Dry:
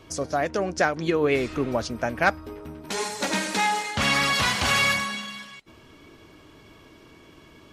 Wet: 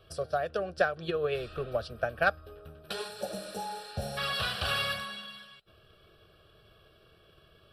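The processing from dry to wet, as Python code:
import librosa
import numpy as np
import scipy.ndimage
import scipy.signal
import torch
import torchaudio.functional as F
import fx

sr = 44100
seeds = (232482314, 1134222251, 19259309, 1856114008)

y = fx.transient(x, sr, attack_db=5, sustain_db=0)
y = fx.spec_repair(y, sr, seeds[0], start_s=3.17, length_s=0.98, low_hz=920.0, high_hz=5400.0, source='before')
y = fx.fixed_phaser(y, sr, hz=1400.0, stages=8)
y = y * 10.0 ** (-6.0 / 20.0)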